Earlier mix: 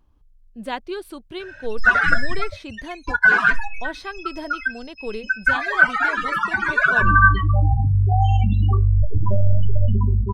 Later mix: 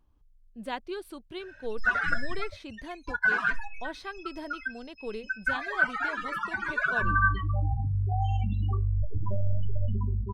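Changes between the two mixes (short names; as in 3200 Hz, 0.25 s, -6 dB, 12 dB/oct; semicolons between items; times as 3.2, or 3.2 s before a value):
speech -6.5 dB; background -10.5 dB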